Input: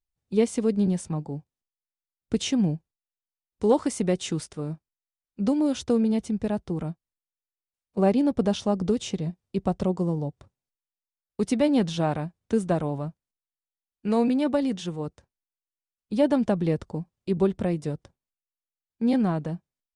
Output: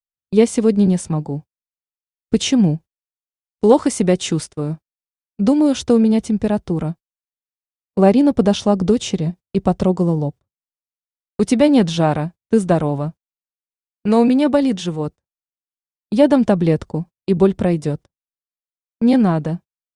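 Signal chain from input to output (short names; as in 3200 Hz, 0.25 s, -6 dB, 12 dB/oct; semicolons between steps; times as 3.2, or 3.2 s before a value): gate -40 dBFS, range -30 dB; gain +9 dB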